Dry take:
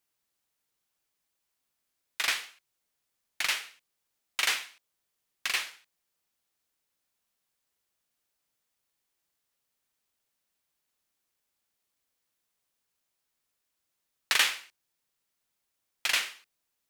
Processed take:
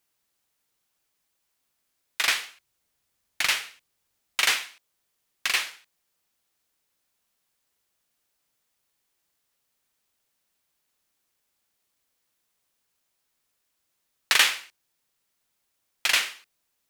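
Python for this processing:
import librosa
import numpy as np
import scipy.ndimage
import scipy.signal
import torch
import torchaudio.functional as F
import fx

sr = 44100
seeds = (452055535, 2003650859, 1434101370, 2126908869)

y = fx.peak_eq(x, sr, hz=61.0, db=8.0, octaves=2.4, at=(2.48, 4.52))
y = y * 10.0 ** (5.0 / 20.0)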